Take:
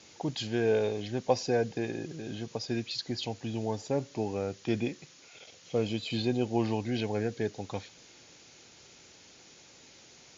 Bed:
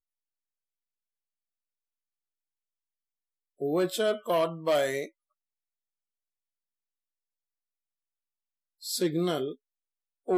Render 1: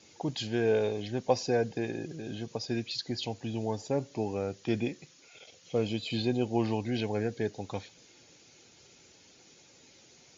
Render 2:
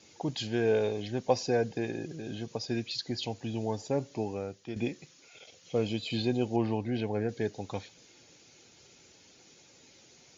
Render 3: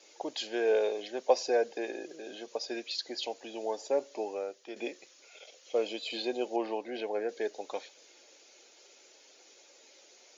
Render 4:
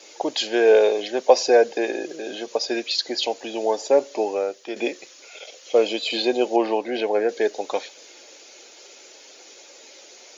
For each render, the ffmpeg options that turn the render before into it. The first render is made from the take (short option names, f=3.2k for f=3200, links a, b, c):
-af "afftdn=nr=6:nf=-56"
-filter_complex "[0:a]asettb=1/sr,asplit=3[a][b][c];[a]atrim=end=6.564[d];[b]atrim=start=6.56:end=7.29,asetpts=PTS-STARTPTS,afade=t=in:d=0.004:c=qsin,afade=t=out:st=0.726:d=0.004:c=qsin,lowpass=f=2k:p=1[e];[c]atrim=start=7.286[f];[d][e]acrossfade=d=0.004:c1=hsin:c2=qsin[g];[g][f]acrossfade=d=0.004:c1=qsin:c2=hsin,asplit=2[h][i];[h]atrim=end=4.76,asetpts=PTS-STARTPTS,afade=t=out:st=4.13:d=0.63:silence=0.281838[j];[i]atrim=start=4.76,asetpts=PTS-STARTPTS,afade=t=in:d=0.004:c=hsin:silence=0.281838[k];[j][k]concat=n=2:v=0:a=1"
-af "highpass=f=360:w=0.5412,highpass=f=360:w=1.3066,equalizer=f=590:t=o:w=0.32:g=5.5"
-af "volume=12dB,alimiter=limit=-2dB:level=0:latency=1"